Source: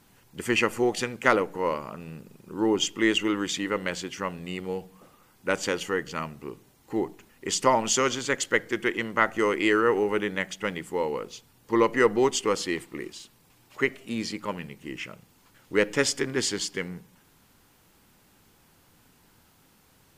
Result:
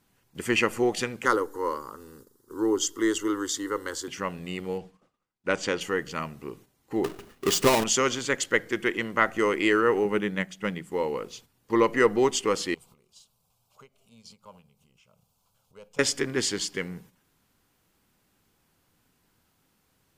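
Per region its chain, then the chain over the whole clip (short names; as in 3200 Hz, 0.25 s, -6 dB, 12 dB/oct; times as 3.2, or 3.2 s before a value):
1.25–4.08 high shelf 4500 Hz +7 dB + fixed phaser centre 660 Hz, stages 6
4.78–5.81 LPF 6800 Hz + expander -49 dBFS
7.04–7.84 half-waves squared off + compressor 2:1, threshold -21 dBFS + small resonant body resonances 400/1200/2900 Hz, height 7 dB, ringing for 35 ms
10.05–10.92 bell 180 Hz +8 dB + upward expander, over -35 dBFS
12.74–15.99 compressor 2.5:1, threshold -47 dBFS + fixed phaser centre 770 Hz, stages 4
whole clip: notch 880 Hz, Q 22; gate -50 dBFS, range -9 dB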